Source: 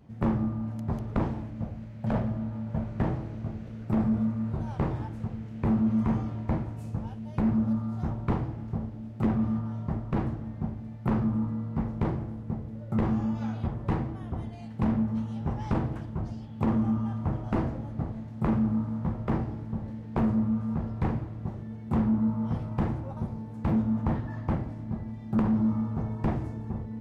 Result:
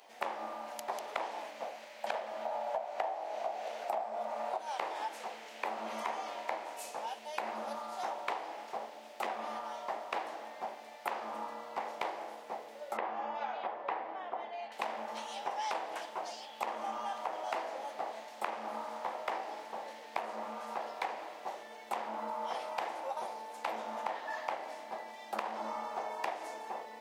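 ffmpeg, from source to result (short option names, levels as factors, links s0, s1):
-filter_complex "[0:a]asettb=1/sr,asplit=3[s0][s1][s2];[s0]atrim=end=2.454[s3];[s1]atrim=start=2.45:end=4.58,asetpts=PTS-STARTPTS,afade=t=in:d=0.004:c=qsin,afade=t=out:st=2.126:d=0.004:c=qsin,equalizer=f=720:t=o:w=0.78:g=13.5[s4];[s2]atrim=start=4.576[s5];[s3][s4]acrossfade=d=0.004:c1=hsin:c2=qsin[s6];[s6][s5]acrossfade=d=0.004:c1=qsin:c2=hsin,asettb=1/sr,asplit=3[s7][s8][s9];[s7]atrim=end=12.974[s10];[s8]atrim=start=12.97:end=14.72,asetpts=PTS-STARTPTS,afade=t=in:d=0.004:c=qsin,afade=t=out:st=1.746:d=0.004:c=qsin,lowpass=2000[s11];[s9]atrim=start=14.716[s12];[s10][s11]acrossfade=d=0.004:c1=hsin:c2=qsin[s13];[s13][s12]acrossfade=d=0.004:c1=qsin:c2=hsin,highpass=f=710:w=0.5412,highpass=f=710:w=1.3066,equalizer=f=1300:t=o:w=1.1:g=-10.5,acompressor=threshold=0.00398:ratio=12,volume=5.96"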